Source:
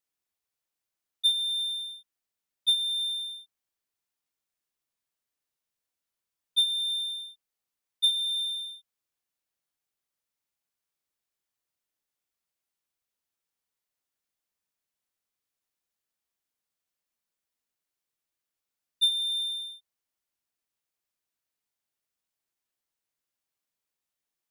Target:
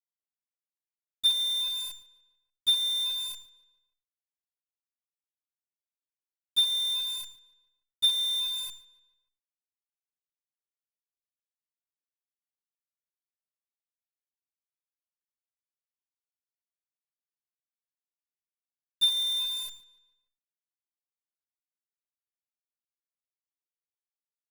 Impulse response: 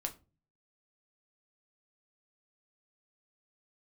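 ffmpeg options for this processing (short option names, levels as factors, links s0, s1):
-filter_complex "[0:a]aeval=exprs='val(0)+0.000355*(sin(2*PI*60*n/s)+sin(2*PI*2*60*n/s)/2+sin(2*PI*3*60*n/s)/3+sin(2*PI*4*60*n/s)/4+sin(2*PI*5*60*n/s)/5)':c=same,acrusher=bits=7:dc=4:mix=0:aa=0.000001,asplit=2[s0][s1];[s1]adelay=146,lowpass=f=4600:p=1,volume=0.112,asplit=2[s2][s3];[s3]adelay=146,lowpass=f=4600:p=1,volume=0.5,asplit=2[s4][s5];[s5]adelay=146,lowpass=f=4600:p=1,volume=0.5,asplit=2[s6][s7];[s7]adelay=146,lowpass=f=4600:p=1,volume=0.5[s8];[s0][s2][s4][s6][s8]amix=inputs=5:normalize=0"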